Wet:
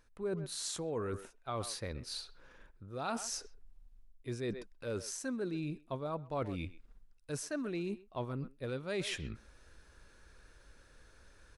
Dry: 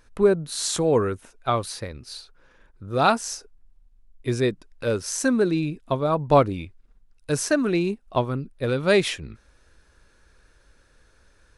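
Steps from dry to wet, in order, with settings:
far-end echo of a speakerphone 130 ms, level −20 dB
reversed playback
downward compressor 4 to 1, threshold −36 dBFS, peak gain reduction 20.5 dB
reversed playback
level −2 dB

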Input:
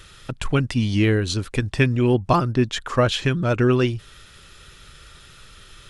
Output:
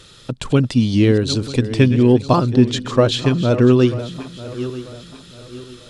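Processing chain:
feedback delay that plays each chunk backwards 470 ms, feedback 57%, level −12.5 dB
octave-band graphic EQ 125/250/500/1,000/4,000/8,000 Hz +9/+11/+10/+5/+11/+8 dB
level −7 dB

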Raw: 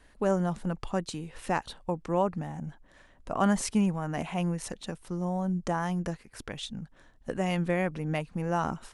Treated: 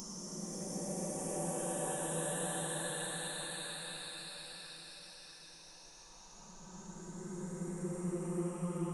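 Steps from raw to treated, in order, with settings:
every frequency bin delayed by itself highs late, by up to 298 ms
drawn EQ curve 110 Hz 0 dB, 860 Hz +8 dB, 6,800 Hz −14 dB
extreme stretch with random phases 31×, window 0.10 s, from 0:04.87
first-order pre-emphasis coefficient 0.9
on a send: feedback delay with all-pass diffusion 588 ms, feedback 52%, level −6.5 dB
on the sum: level +10 dB

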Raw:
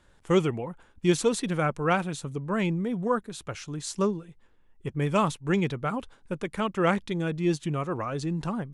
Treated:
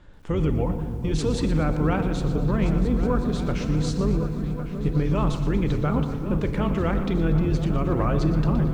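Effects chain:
sub-octave generator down 2 octaves, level −2 dB
low-pass filter 4,800 Hz 12 dB per octave
low-shelf EQ 470 Hz +7.5 dB
brickwall limiter −20.5 dBFS, peak gain reduction 16.5 dB
on a send: echo whose low-pass opens from repeat to repeat 369 ms, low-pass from 200 Hz, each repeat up 2 octaves, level −6 dB
on the sum: feedback delay network reverb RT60 2.4 s, low-frequency decay 1.05×, high-frequency decay 0.4×, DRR 9 dB
feedback echo at a low word length 119 ms, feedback 55%, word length 9 bits, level −12 dB
level +4 dB

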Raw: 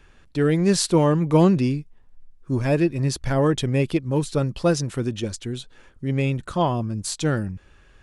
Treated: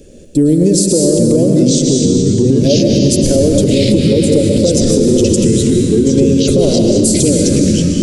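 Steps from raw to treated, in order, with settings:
gain on a spectral selection 0:00.31–0:00.61, 360–7,300 Hz −9 dB
parametric band 940 Hz +7 dB 0.38 octaves
harmonic and percussive parts rebalanced harmonic −7 dB
drawn EQ curve 120 Hz 0 dB, 230 Hz +11 dB, 380 Hz +9 dB, 560 Hz +14 dB, 920 Hz −28 dB, 7,400 Hz +10 dB, 12,000 Hz +8 dB
downward compressor, threshold −22 dBFS, peak gain reduction 16.5 dB
convolution reverb RT60 2.0 s, pre-delay 102 ms, DRR 1.5 dB
delay with pitch and tempo change per echo 732 ms, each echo −4 semitones, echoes 3
boost into a limiter +15.5 dB
level −1 dB

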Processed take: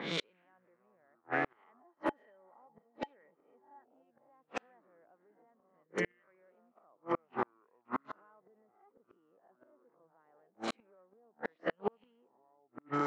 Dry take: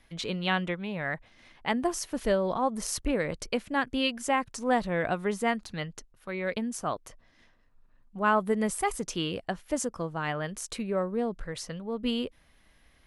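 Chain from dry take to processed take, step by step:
peak hold with a rise ahead of every peak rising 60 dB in 0.39 s
brickwall limiter −23 dBFS, peak gain reduction 11 dB
delay with pitch and tempo change per echo 86 ms, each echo −7 semitones, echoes 2, each echo −6 dB
leveller curve on the samples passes 1
meter weighting curve A
upward compression, threshold −35 dBFS
three-way crossover with the lows and the highs turned down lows −20 dB, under 160 Hz, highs −20 dB, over 2,300 Hz
gate with flip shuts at −30 dBFS, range −42 dB
low-pass that shuts in the quiet parts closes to 840 Hz, open at −42 dBFS
0:01.80–0:03.84: hollow resonant body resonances 850/1,900/3,100 Hz, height 15 dB, ringing for 85 ms
level +10 dB

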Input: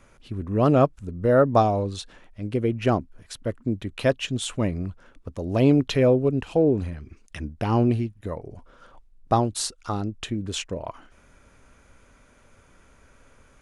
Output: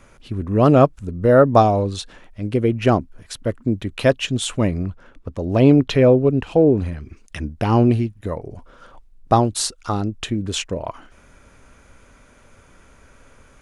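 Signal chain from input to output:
0:04.83–0:06.86: high-shelf EQ 5,500 Hz −8.5 dB
level +5.5 dB

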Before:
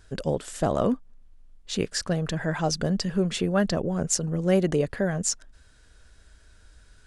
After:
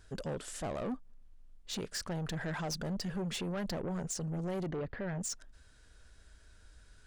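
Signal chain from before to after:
brickwall limiter −17.5 dBFS, peak gain reduction 10.5 dB
soft clipping −28 dBFS, distortion −10 dB
0:04.66–0:05.21: high-frequency loss of the air 250 metres
level −4.5 dB

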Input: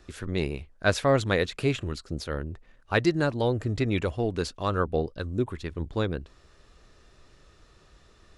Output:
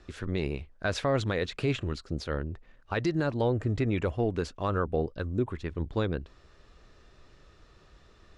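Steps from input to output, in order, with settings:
0:03.36–0:05.69: dynamic equaliser 4,200 Hz, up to −6 dB, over −53 dBFS, Q 1.5
brickwall limiter −17.5 dBFS, peak gain reduction 8.5 dB
high-frequency loss of the air 68 metres

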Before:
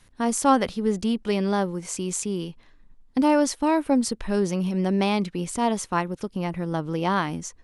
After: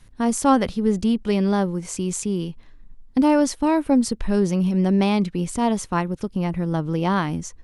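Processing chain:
low-shelf EQ 220 Hz +9 dB

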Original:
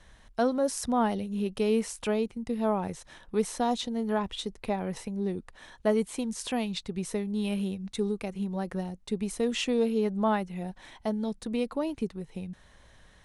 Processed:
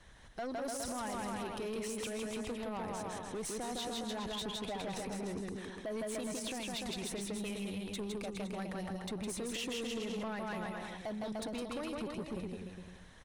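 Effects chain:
harmonic and percussive parts rebalanced harmonic −10 dB
bouncing-ball delay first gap 160 ms, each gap 0.85×, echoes 5
brickwall limiter −28 dBFS, peak gain reduction 11 dB
soft clipping −36.5 dBFS, distortion −12 dB
level +2 dB

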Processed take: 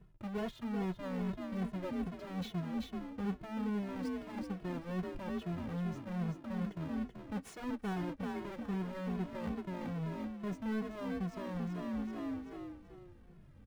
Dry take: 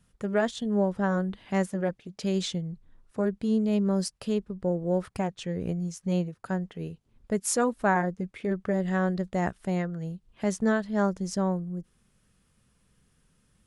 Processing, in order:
each half-wave held at its own peak
low-shelf EQ 330 Hz +8.5 dB
on a send: echo with shifted repeats 383 ms, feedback 31%, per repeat +44 Hz, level −7 dB
on the sum: soft clipping −10 dBFS, distortion −19 dB
bass and treble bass −2 dB, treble −14 dB
reversed playback
downward compressor 8 to 1, threshold −34 dBFS, peak gain reduction 18 dB
reversed playback
barber-pole flanger 2.3 ms −2.4 Hz

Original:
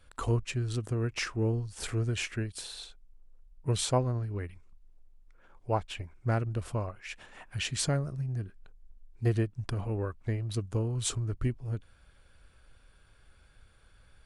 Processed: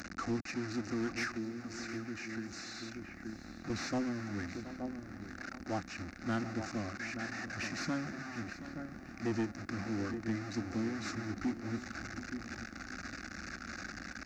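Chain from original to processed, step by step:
linear delta modulator 32 kbit/s, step −33.5 dBFS
high-pass filter 150 Hz 12 dB per octave
parametric band 590 Hz −11 dB 0.58 octaves
slap from a distant wall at 150 metres, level −10 dB
0:01.35–0:03.70: downward compressor, threshold −38 dBFS, peak gain reduction 11 dB
low-shelf EQ 380 Hz +6 dB
phaser with its sweep stopped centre 650 Hz, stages 8
soft clipping −30.5 dBFS, distortion −13 dB
feedback echo at a low word length 724 ms, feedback 35%, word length 11 bits, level −14 dB
level +2.5 dB

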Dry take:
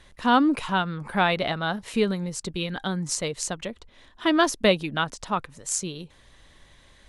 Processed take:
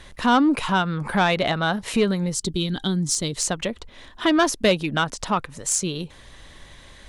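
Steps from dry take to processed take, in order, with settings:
gain on a spectral selection 0:02.34–0:03.36, 410–3,000 Hz −10 dB
in parallel at +2 dB: downward compressor, threshold −31 dBFS, peak gain reduction 16 dB
on the sum: soft clipping −11.5 dBFS, distortion −18 dB
level +1.5 dB

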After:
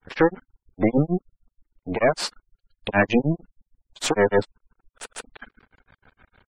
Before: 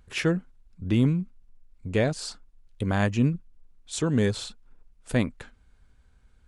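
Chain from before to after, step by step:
granular cloud 151 ms, grains 6.5 per second, pitch spread up and down by 0 semitones
half-wave rectification
mid-hump overdrive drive 23 dB, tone 2,600 Hz, clips at −13 dBFS
gate on every frequency bin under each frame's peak −20 dB strong
level +7.5 dB

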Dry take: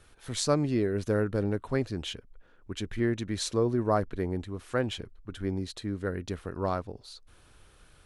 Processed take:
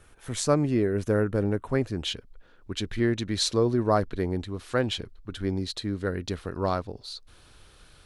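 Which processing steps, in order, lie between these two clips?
parametric band 4,200 Hz −6 dB 0.8 octaves, from 0:02.05 +6 dB
level +3 dB

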